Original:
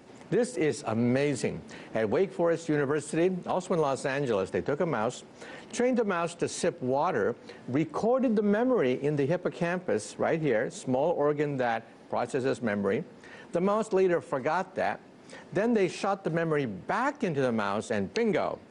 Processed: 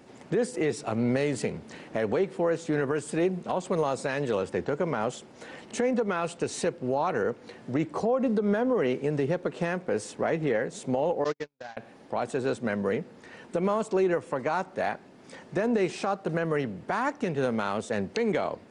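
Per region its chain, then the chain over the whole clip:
11.24–11.77 CVSD 32 kbps + gate -26 dBFS, range -52 dB + tilt shelf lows -4 dB, about 810 Hz
whole clip: dry

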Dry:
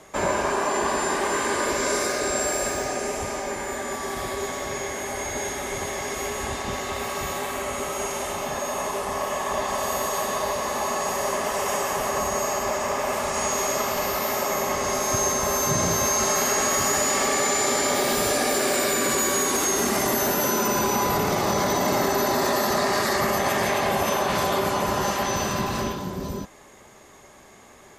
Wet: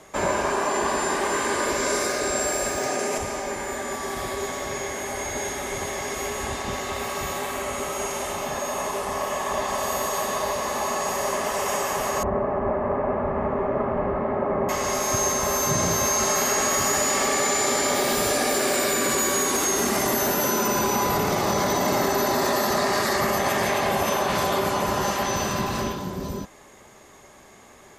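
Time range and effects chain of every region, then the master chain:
2.77–3.18 HPF 130 Hz + fast leveller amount 100%
12.23–14.69 LPF 1900 Hz 24 dB/oct + tilt shelf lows +8 dB, about 810 Hz
whole clip: dry

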